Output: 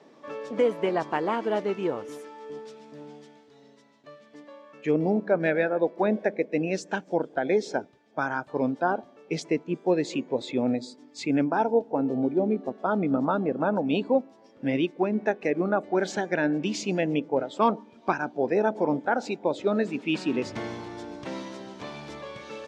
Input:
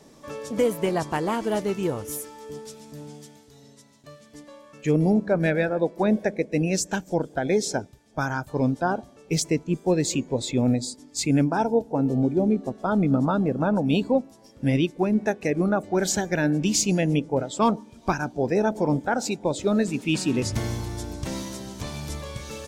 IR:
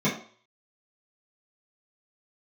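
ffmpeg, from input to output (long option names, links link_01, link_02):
-af "highpass=270,lowpass=3000"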